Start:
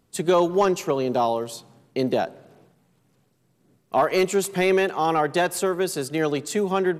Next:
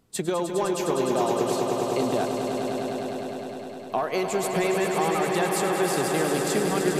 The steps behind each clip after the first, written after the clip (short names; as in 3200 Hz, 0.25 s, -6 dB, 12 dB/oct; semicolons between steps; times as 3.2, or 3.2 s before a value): compressor, threshold -23 dBFS, peak gain reduction 8.5 dB; swelling echo 0.102 s, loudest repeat 5, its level -7.5 dB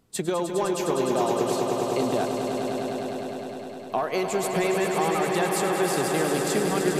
nothing audible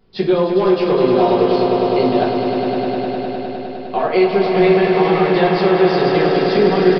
shoebox room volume 40 m³, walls mixed, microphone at 1.1 m; downsampling 11025 Hz; gain +1.5 dB